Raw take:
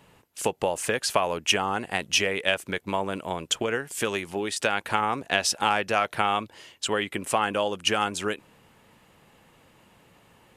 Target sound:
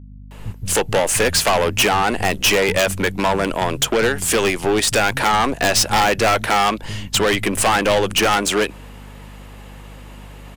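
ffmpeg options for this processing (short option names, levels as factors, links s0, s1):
-filter_complex "[0:a]aeval=exprs='0.531*sin(PI/2*3.16*val(0)/0.531)':c=same,aeval=exprs='0.562*(cos(1*acos(clip(val(0)/0.562,-1,1)))-cos(1*PI/2))+0.112*(cos(4*acos(clip(val(0)/0.562,-1,1)))-cos(4*PI/2))+0.1*(cos(5*acos(clip(val(0)/0.562,-1,1)))-cos(5*PI/2))+0.0708*(cos(7*acos(clip(val(0)/0.562,-1,1)))-cos(7*PI/2))':c=same,asoftclip=type=tanh:threshold=0.316,acrossover=split=170[s0][s1];[s1]adelay=310[s2];[s0][s2]amix=inputs=2:normalize=0,aeval=exprs='val(0)+0.0141*(sin(2*PI*50*n/s)+sin(2*PI*2*50*n/s)/2+sin(2*PI*3*50*n/s)/3+sin(2*PI*4*50*n/s)/4+sin(2*PI*5*50*n/s)/5)':c=same"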